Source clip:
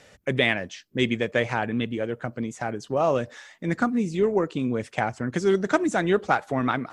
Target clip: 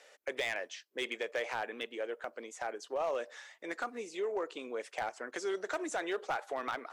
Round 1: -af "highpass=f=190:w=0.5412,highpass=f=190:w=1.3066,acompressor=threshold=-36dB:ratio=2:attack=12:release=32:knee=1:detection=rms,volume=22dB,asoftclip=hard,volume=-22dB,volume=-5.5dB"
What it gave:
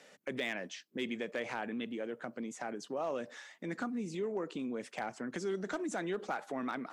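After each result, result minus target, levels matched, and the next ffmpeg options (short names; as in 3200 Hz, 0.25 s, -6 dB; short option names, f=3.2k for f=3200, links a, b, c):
250 Hz band +8.5 dB; compressor: peak gain reduction +4 dB
-af "highpass=f=420:w=0.5412,highpass=f=420:w=1.3066,acompressor=threshold=-36dB:ratio=2:attack=12:release=32:knee=1:detection=rms,volume=22dB,asoftclip=hard,volume=-22dB,volume=-5.5dB"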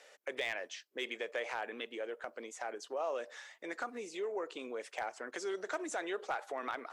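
compressor: peak gain reduction +3 dB
-af "highpass=f=420:w=0.5412,highpass=f=420:w=1.3066,acompressor=threshold=-30dB:ratio=2:attack=12:release=32:knee=1:detection=rms,volume=22dB,asoftclip=hard,volume=-22dB,volume=-5.5dB"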